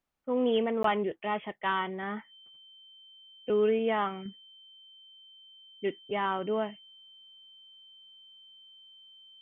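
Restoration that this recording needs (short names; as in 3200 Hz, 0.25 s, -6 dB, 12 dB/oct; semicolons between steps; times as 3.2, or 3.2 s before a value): notch 3100 Hz, Q 30; interpolate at 0.83, 13 ms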